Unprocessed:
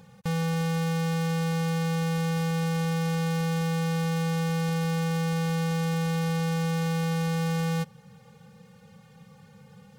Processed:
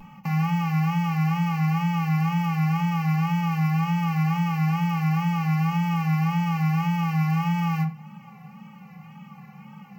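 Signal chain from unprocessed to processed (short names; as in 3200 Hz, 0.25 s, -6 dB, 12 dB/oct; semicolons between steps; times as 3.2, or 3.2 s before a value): HPF 180 Hz 24 dB/oct; band shelf 6300 Hz -14 dB; in parallel at +1 dB: compressor, threshold -41 dBFS, peak gain reduction 12 dB; on the sum: soft clip -19.5 dBFS, distortion -29 dB; fixed phaser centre 2400 Hz, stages 8; wow and flutter 90 cents; shoebox room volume 32 m³, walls mixed, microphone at 0.33 m; gain +4 dB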